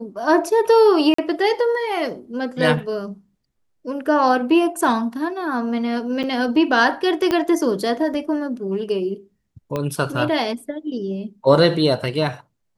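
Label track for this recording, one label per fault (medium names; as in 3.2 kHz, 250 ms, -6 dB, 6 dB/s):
1.140000	1.180000	dropout 44 ms
6.230000	6.240000	dropout 7.2 ms
7.310000	7.310000	pop -7 dBFS
9.760000	9.760000	pop -12 dBFS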